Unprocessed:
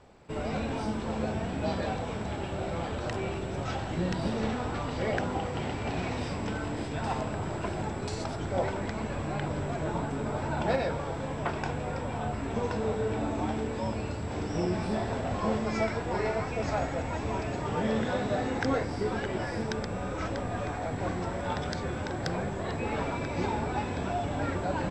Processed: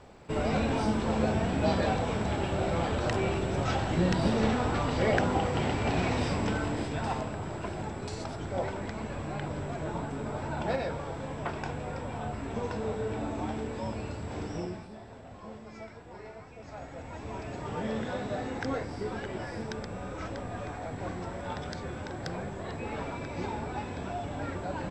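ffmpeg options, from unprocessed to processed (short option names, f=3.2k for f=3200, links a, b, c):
-af "volume=15.5dB,afade=t=out:st=6.37:d=0.99:silence=0.446684,afade=t=out:st=14.45:d=0.43:silence=0.223872,afade=t=in:st=16.64:d=1.04:silence=0.266073"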